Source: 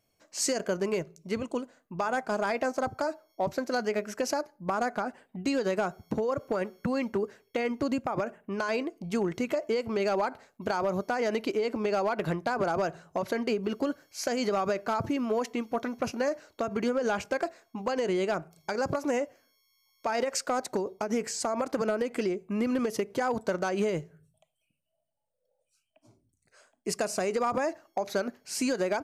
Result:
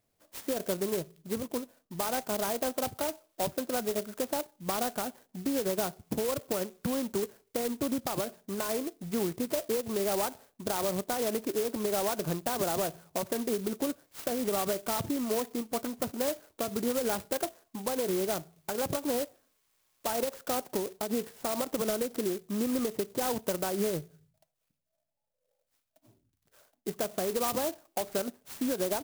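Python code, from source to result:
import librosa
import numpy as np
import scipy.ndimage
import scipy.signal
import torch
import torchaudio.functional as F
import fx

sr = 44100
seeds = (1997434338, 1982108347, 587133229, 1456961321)

y = fx.env_lowpass_down(x, sr, base_hz=1800.0, full_db=-29.0)
y = fx.clock_jitter(y, sr, seeds[0], jitter_ms=0.12)
y = y * librosa.db_to_amplitude(-2.0)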